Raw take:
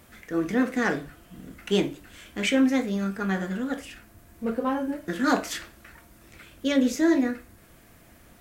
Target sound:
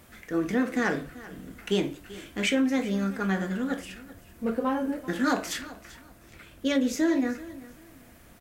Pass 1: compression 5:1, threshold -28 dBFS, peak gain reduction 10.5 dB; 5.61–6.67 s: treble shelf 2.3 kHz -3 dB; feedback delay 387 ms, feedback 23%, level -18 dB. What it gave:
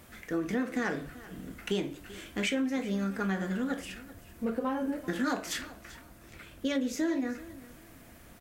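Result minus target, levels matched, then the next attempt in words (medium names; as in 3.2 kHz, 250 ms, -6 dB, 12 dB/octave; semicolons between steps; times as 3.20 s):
compression: peak gain reduction +6 dB
compression 5:1, threshold -20.5 dBFS, peak gain reduction 4.5 dB; 5.61–6.67 s: treble shelf 2.3 kHz -3 dB; feedback delay 387 ms, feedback 23%, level -18 dB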